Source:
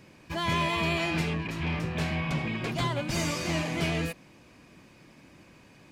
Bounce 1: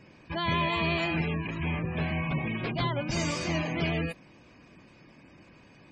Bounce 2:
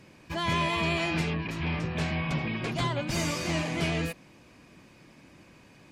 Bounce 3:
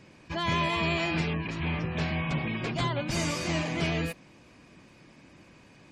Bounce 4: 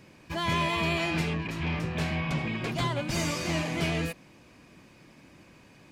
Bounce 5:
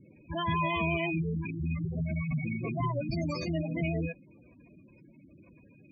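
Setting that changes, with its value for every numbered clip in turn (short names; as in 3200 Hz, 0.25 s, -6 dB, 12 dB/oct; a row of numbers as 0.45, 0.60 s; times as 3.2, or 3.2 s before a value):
spectral gate, under each frame's peak: -25, -45, -35, -60, -10 dB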